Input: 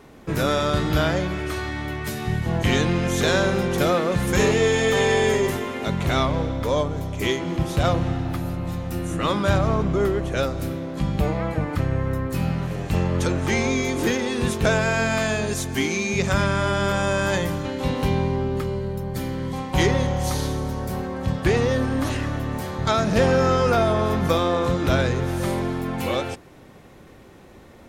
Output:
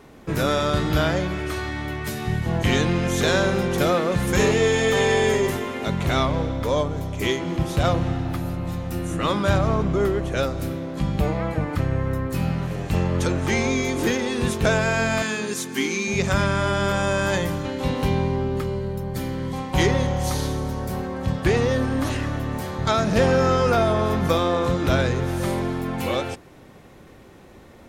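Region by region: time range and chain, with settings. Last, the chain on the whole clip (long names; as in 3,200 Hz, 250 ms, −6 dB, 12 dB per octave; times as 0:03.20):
0:15.22–0:16.08: high-pass filter 180 Hz 24 dB per octave + parametric band 670 Hz −14.5 dB 0.34 octaves
whole clip: no processing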